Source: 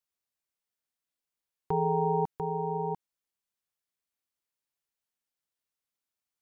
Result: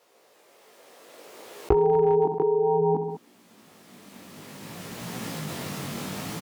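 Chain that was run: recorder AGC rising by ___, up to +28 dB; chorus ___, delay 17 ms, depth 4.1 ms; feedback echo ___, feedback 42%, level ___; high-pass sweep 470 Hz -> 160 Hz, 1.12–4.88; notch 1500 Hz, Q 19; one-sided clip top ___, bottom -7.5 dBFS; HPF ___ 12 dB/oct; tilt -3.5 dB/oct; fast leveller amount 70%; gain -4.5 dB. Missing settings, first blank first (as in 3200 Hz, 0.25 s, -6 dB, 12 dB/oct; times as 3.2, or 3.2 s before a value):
12 dB/s, 0.6 Hz, 67 ms, -23 dB, -20.5 dBFS, 62 Hz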